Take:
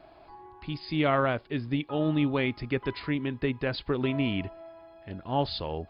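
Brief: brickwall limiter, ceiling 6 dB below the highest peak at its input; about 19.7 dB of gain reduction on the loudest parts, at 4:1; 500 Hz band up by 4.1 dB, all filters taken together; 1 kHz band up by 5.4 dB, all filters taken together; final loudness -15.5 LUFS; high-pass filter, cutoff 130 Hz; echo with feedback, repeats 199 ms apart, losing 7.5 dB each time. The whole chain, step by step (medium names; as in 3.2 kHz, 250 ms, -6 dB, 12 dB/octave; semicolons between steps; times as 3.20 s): high-pass 130 Hz; peaking EQ 500 Hz +3.5 dB; peaking EQ 1 kHz +6 dB; compression 4:1, threshold -41 dBFS; peak limiter -32 dBFS; feedback delay 199 ms, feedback 42%, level -7.5 dB; trim +28 dB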